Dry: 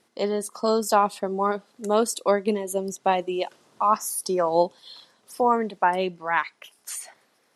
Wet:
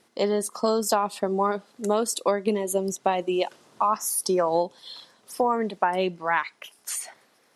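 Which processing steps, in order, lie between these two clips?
downward compressor 10 to 1, threshold −21 dBFS, peak gain reduction 8.5 dB
level +3 dB

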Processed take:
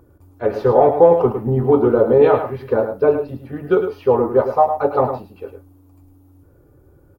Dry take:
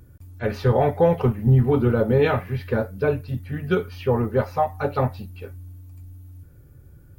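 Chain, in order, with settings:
flat-topped bell 590 Hz +13 dB 2.5 octaves
on a send: single-tap delay 106 ms −8.5 dB
on the sum: level −5.5 dB

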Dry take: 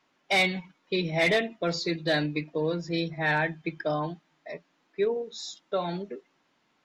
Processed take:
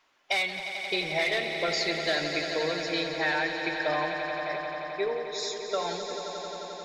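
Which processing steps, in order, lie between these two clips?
parametric band 190 Hz −15 dB 1.9 octaves
downward compressor, threshold −29 dBFS, peak gain reduction 8.5 dB
echo that builds up and dies away 88 ms, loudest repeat 5, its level −11 dB
level +4 dB

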